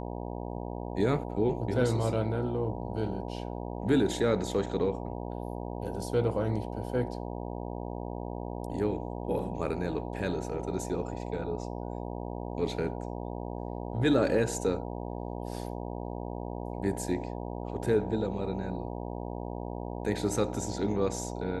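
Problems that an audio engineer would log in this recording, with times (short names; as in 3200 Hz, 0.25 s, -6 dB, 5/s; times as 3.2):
buzz 60 Hz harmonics 16 -37 dBFS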